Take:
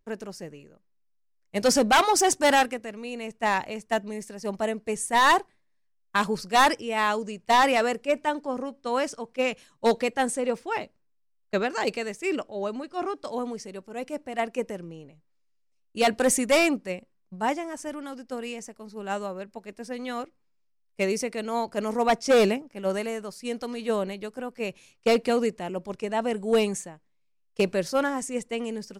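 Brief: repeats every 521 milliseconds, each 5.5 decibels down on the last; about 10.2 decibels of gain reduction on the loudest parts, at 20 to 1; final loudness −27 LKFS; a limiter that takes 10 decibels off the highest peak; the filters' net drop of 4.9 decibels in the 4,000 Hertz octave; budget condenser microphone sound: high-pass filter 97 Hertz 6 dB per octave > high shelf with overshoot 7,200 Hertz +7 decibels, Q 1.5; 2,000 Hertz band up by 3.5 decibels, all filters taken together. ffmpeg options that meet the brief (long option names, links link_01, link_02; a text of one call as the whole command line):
ffmpeg -i in.wav -af "equalizer=frequency=2000:width_type=o:gain=6.5,equalizer=frequency=4000:width_type=o:gain=-8.5,acompressor=threshold=-24dB:ratio=20,alimiter=limit=-23dB:level=0:latency=1,highpass=frequency=97:poles=1,highshelf=frequency=7200:width_type=q:width=1.5:gain=7,aecho=1:1:521|1042|1563|2084|2605|3126|3647:0.531|0.281|0.149|0.079|0.0419|0.0222|0.0118,volume=5.5dB" out.wav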